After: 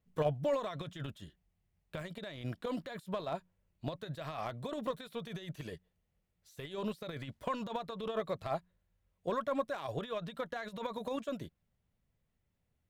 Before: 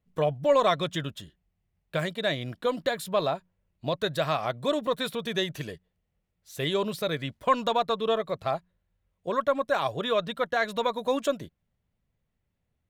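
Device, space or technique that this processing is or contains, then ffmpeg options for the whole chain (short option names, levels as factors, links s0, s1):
de-esser from a sidechain: -filter_complex "[0:a]asplit=2[s0][s1];[s1]highpass=6700,apad=whole_len=568682[s2];[s0][s2]sidechaincompress=threshold=0.00126:ratio=20:attack=0.86:release=23,volume=0.794"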